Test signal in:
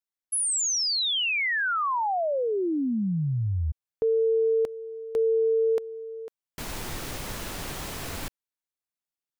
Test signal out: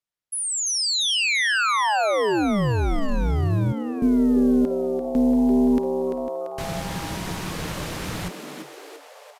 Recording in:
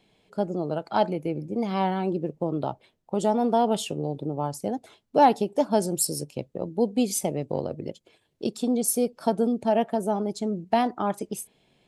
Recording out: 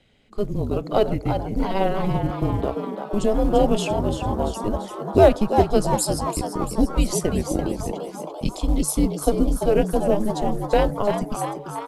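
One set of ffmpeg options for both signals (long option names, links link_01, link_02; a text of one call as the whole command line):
ffmpeg -i in.wav -filter_complex "[0:a]highshelf=frequency=8100:gain=-8.5,afreqshift=-200,tremolo=f=210:d=0.462,acrusher=bits=9:mode=log:mix=0:aa=0.000001,asplit=8[link_01][link_02][link_03][link_04][link_05][link_06][link_07][link_08];[link_02]adelay=341,afreqshift=140,volume=-8dB[link_09];[link_03]adelay=682,afreqshift=280,volume=-12.6dB[link_10];[link_04]adelay=1023,afreqshift=420,volume=-17.2dB[link_11];[link_05]adelay=1364,afreqshift=560,volume=-21.7dB[link_12];[link_06]adelay=1705,afreqshift=700,volume=-26.3dB[link_13];[link_07]adelay=2046,afreqshift=840,volume=-30.9dB[link_14];[link_08]adelay=2387,afreqshift=980,volume=-35.5dB[link_15];[link_01][link_09][link_10][link_11][link_12][link_13][link_14][link_15]amix=inputs=8:normalize=0,aresample=32000,aresample=44100,volume=6.5dB" out.wav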